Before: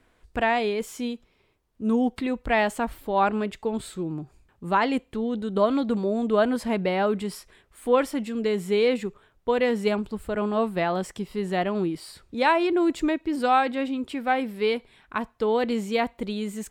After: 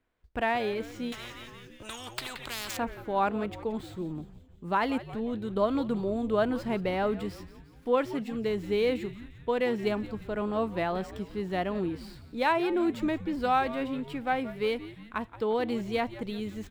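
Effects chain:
running median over 5 samples
noise gate −51 dBFS, range −10 dB
echo with shifted repeats 175 ms, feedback 57%, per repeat −120 Hz, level −15 dB
0:01.12–0:02.77: every bin compressed towards the loudest bin 10 to 1
level −5 dB

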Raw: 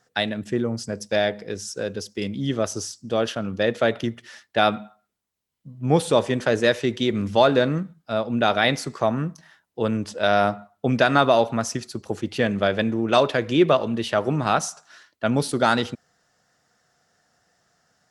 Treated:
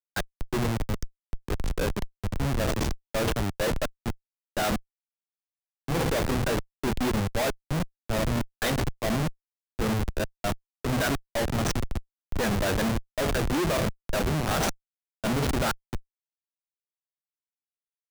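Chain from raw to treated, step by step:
parametric band 1,600 Hz +7.5 dB 0.21 octaves
hum removal 65.02 Hz, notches 33
gate pattern "xx..xxxxx" 148 BPM
comparator with hysteresis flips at −25 dBFS
multiband upward and downward expander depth 40%

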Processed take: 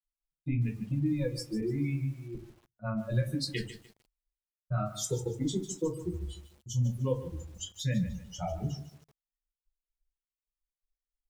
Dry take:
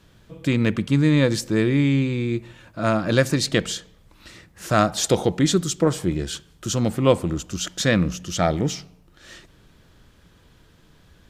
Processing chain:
spectral dynamics exaggerated over time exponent 3
0:01.60–0:02.35: high-pass filter 120 Hz 24 dB per octave
reverb reduction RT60 1.4 s
0:03.70–0:04.72: low-pass filter 1,400 Hz 12 dB per octave
noise gate with hold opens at −57 dBFS
low-shelf EQ 380 Hz +11.5 dB
brickwall limiter −13 dBFS, peak gain reduction 9 dB
downward compressor 5 to 1, threshold −23 dBFS, peak gain reduction 7 dB
convolution reverb RT60 0.30 s, pre-delay 4 ms, DRR −0.5 dB
feedback echo at a low word length 149 ms, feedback 35%, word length 7 bits, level −12.5 dB
level −9 dB

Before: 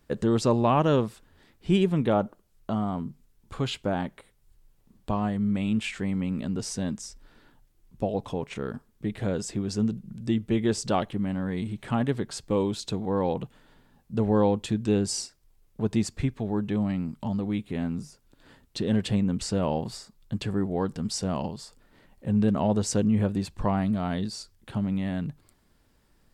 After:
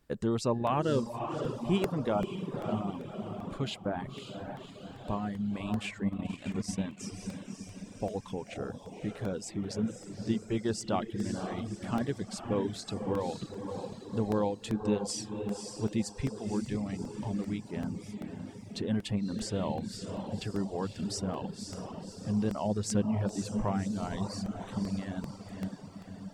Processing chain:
feedback delay with all-pass diffusion 552 ms, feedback 60%, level −5.5 dB
0:06.06–0:06.97: transient designer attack +3 dB, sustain −9 dB
reverb reduction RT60 0.97 s
regular buffer underruns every 0.39 s, samples 64, repeat, from 0:00.67
level −5.5 dB

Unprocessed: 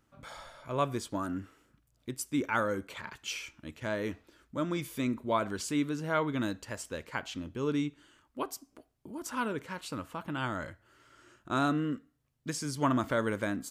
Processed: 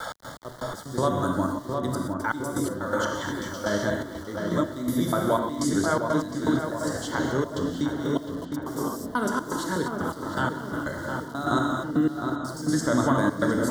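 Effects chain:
slices reordered back to front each 122 ms, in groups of 3
in parallel at +2 dB: brickwall limiter −24.5 dBFS, peak gain reduction 9 dB
on the sum: reverb whose tail is shaped and stops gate 290 ms flat, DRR 0.5 dB
gate pattern "x.x..x..xxxxx.xx" 123 BPM −12 dB
centre clipping without the shift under −45 dBFS
Butterworth band-reject 2,500 Hz, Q 1.8
on a send: feedback echo with a low-pass in the loop 709 ms, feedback 51%, low-pass 1,900 Hz, level −7 dB
on the sum: multiband upward and downward compressor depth 40%

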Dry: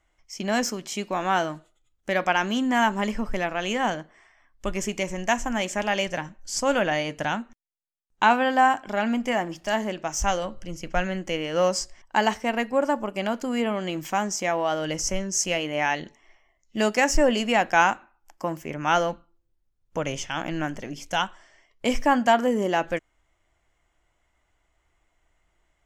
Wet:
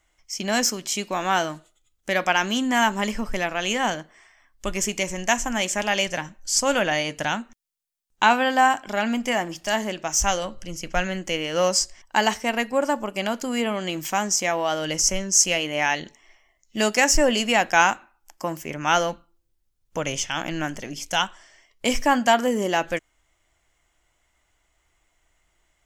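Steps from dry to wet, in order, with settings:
high-shelf EQ 2,800 Hz +9.5 dB

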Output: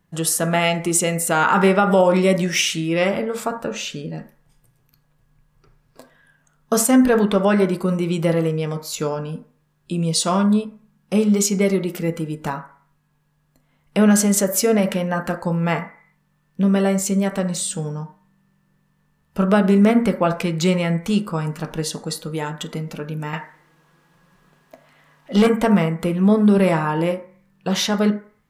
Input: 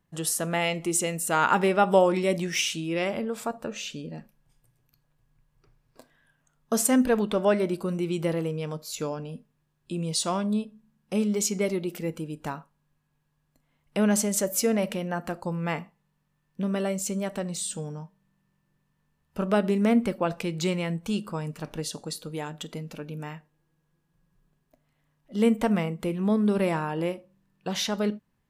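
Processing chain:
0:23.33–0:25.47: mid-hump overdrive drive 21 dB, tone 4,100 Hz, clips at −11 dBFS
on a send at −7 dB: high shelf with overshoot 2,400 Hz −9.5 dB, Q 3 + convolution reverb RT60 0.50 s, pre-delay 3 ms
on the sum: boost into a limiter +12.5 dB
level −5.5 dB

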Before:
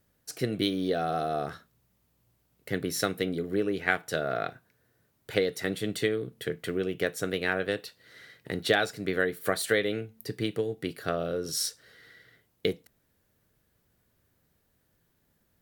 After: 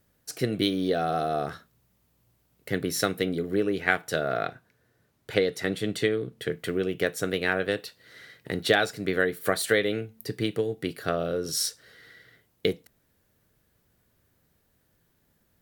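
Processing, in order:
0:04.47–0:06.49: high-shelf EQ 11,000 Hz −9 dB
level +2.5 dB

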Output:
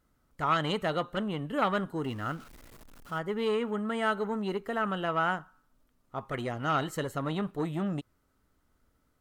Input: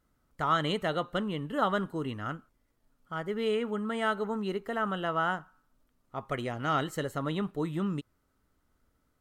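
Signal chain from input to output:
0:02.04–0:03.19: converter with a step at zero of −46.5 dBFS
saturating transformer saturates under 810 Hz
level +1.5 dB

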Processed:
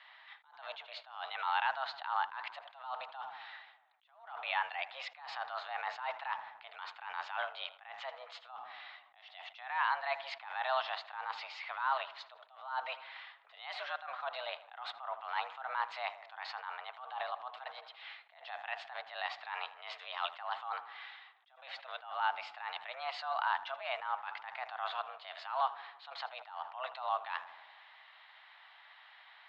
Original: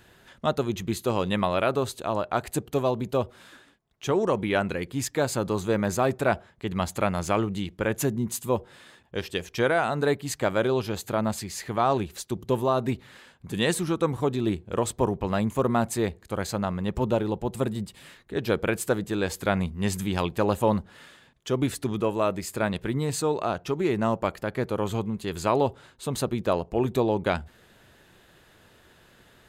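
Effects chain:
single-sideband voice off tune +260 Hz 570–3,600 Hz
brickwall limiter −23 dBFS, peak gain reduction 11.5 dB
on a send: tape delay 80 ms, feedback 70%, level −16 dB, low-pass 2,900 Hz
on the sum: level that may rise only so fast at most 100 dB per second
level +1.5 dB

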